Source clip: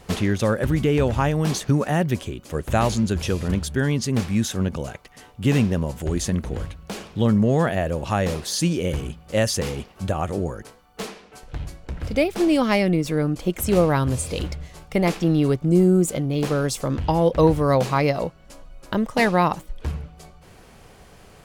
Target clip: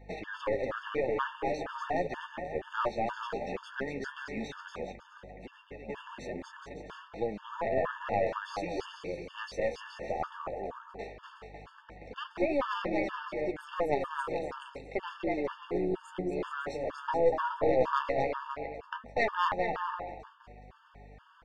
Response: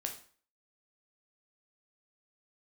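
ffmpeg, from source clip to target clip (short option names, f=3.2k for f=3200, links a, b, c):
-filter_complex "[0:a]highpass=520,lowpass=2.1k,aecho=1:1:240|420|555|656.2|732.2:0.631|0.398|0.251|0.158|0.1,flanger=delay=5.9:depth=9.7:regen=33:speed=0.14:shape=triangular,aeval=exprs='(tanh(8.91*val(0)+0.65)-tanh(0.65))/8.91':c=same,asplit=3[a][b][c];[a]afade=t=out:st=4.91:d=0.02[d];[b]acompressor=threshold=-45dB:ratio=12,afade=t=in:st=4.91:d=0.02,afade=t=out:st=5.88:d=0.02[e];[c]afade=t=in:st=5.88:d=0.02[f];[d][e][f]amix=inputs=3:normalize=0,aeval=exprs='val(0)+0.002*(sin(2*PI*50*n/s)+sin(2*PI*2*50*n/s)/2+sin(2*PI*3*50*n/s)/3+sin(2*PI*4*50*n/s)/4+sin(2*PI*5*50*n/s)/5)':c=same,afftfilt=real='re*gt(sin(2*PI*2.1*pts/sr)*(1-2*mod(floor(b*sr/1024/900),2)),0)':imag='im*gt(sin(2*PI*2.1*pts/sr)*(1-2*mod(floor(b*sr/1024/900),2)),0)':win_size=1024:overlap=0.75,volume=3dB"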